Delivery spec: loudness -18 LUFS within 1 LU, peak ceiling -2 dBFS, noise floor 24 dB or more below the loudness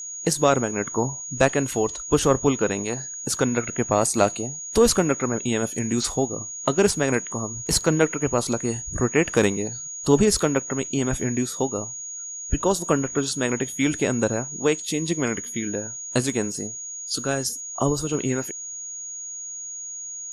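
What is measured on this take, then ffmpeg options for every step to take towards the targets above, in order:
steady tone 6700 Hz; tone level -32 dBFS; loudness -24.0 LUFS; peak -4.5 dBFS; loudness target -18.0 LUFS
-> -af "bandreject=f=6.7k:w=30"
-af "volume=6dB,alimiter=limit=-2dB:level=0:latency=1"

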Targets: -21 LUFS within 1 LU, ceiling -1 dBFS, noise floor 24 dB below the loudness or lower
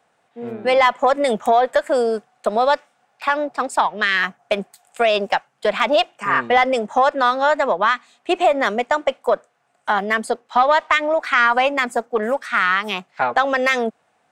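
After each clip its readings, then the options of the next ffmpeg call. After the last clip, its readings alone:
loudness -19.0 LUFS; peak -3.5 dBFS; loudness target -21.0 LUFS
-> -af "volume=-2dB"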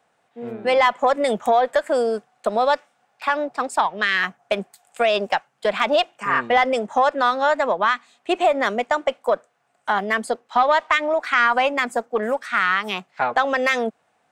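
loudness -21.0 LUFS; peak -5.5 dBFS; noise floor -67 dBFS

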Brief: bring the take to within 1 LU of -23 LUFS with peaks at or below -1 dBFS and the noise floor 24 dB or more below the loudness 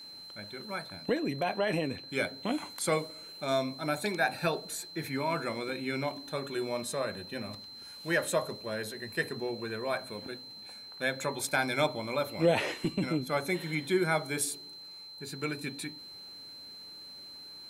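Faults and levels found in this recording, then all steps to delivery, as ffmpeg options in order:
steady tone 4100 Hz; tone level -45 dBFS; loudness -33.0 LUFS; peak -14.5 dBFS; loudness target -23.0 LUFS
-> -af "bandreject=f=4.1k:w=30"
-af "volume=10dB"

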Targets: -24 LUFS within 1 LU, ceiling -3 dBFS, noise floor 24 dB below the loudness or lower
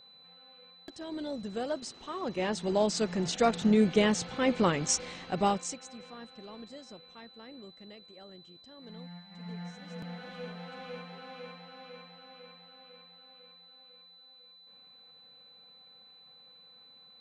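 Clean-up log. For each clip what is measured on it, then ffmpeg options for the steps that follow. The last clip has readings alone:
steady tone 4000 Hz; tone level -54 dBFS; loudness -31.0 LUFS; peak -12.5 dBFS; loudness target -24.0 LUFS
-> -af "bandreject=f=4k:w=30"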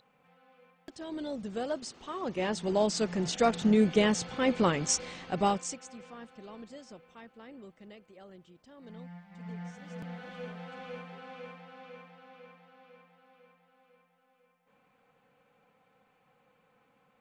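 steady tone none; loudness -31.0 LUFS; peak -12.5 dBFS; loudness target -24.0 LUFS
-> -af "volume=7dB"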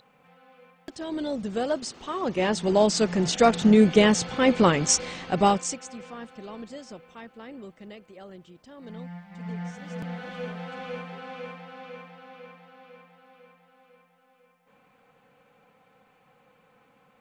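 loudness -24.0 LUFS; peak -5.5 dBFS; noise floor -63 dBFS

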